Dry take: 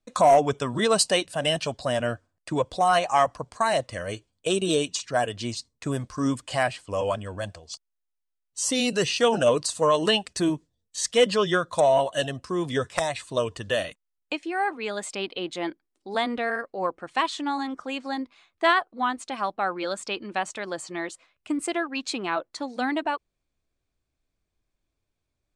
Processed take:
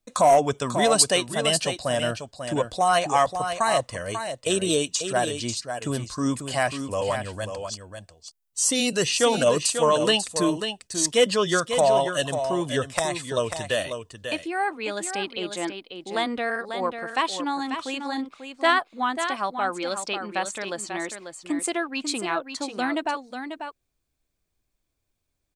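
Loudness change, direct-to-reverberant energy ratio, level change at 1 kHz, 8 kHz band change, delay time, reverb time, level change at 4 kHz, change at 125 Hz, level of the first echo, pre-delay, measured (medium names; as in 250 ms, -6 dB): +1.0 dB, no reverb, +1.0 dB, +5.5 dB, 542 ms, no reverb, +2.0 dB, +0.5 dB, -8.0 dB, no reverb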